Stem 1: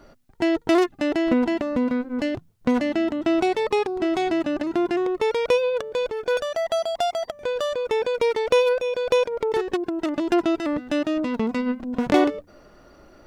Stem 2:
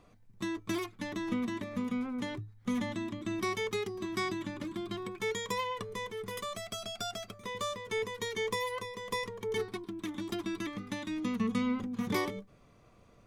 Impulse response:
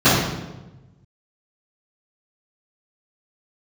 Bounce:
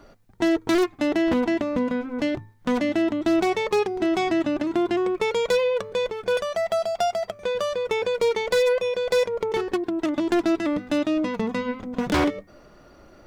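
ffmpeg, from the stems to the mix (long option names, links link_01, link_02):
-filter_complex "[0:a]aeval=exprs='0.178*(abs(mod(val(0)/0.178+3,4)-2)-1)':channel_layout=same,volume=-0.5dB[link_01];[1:a]lowpass=7000,lowshelf=frequency=78:gain=-7.5,bandreject=frequency=80.67:width_type=h:width=4,bandreject=frequency=161.34:width_type=h:width=4,bandreject=frequency=242.01:width_type=h:width=4,bandreject=frequency=322.68:width_type=h:width=4,bandreject=frequency=403.35:width_type=h:width=4,bandreject=frequency=484.02:width_type=h:width=4,bandreject=frequency=564.69:width_type=h:width=4,bandreject=frequency=645.36:width_type=h:width=4,bandreject=frequency=726.03:width_type=h:width=4,bandreject=frequency=806.7:width_type=h:width=4,bandreject=frequency=887.37:width_type=h:width=4,bandreject=frequency=968.04:width_type=h:width=4,bandreject=frequency=1048.71:width_type=h:width=4,bandreject=frequency=1129.38:width_type=h:width=4,bandreject=frequency=1210.05:width_type=h:width=4,bandreject=frequency=1290.72:width_type=h:width=4,bandreject=frequency=1371.39:width_type=h:width=4,bandreject=frequency=1452.06:width_type=h:width=4,bandreject=frequency=1532.73:width_type=h:width=4,bandreject=frequency=1613.4:width_type=h:width=4,bandreject=frequency=1694.07:width_type=h:width=4,bandreject=frequency=1774.74:width_type=h:width=4,bandreject=frequency=1855.41:width_type=h:width=4,bandreject=frequency=1936.08:width_type=h:width=4,bandreject=frequency=2016.75:width_type=h:width=4,bandreject=frequency=2097.42:width_type=h:width=4,bandreject=frequency=2178.09:width_type=h:width=4,bandreject=frequency=2258.76:width_type=h:width=4,bandreject=frequency=2339.43:width_type=h:width=4,bandreject=frequency=2420.1:width_type=h:width=4,bandreject=frequency=2500.77:width_type=h:width=4,volume=1.5dB[link_02];[link_01][link_02]amix=inputs=2:normalize=0"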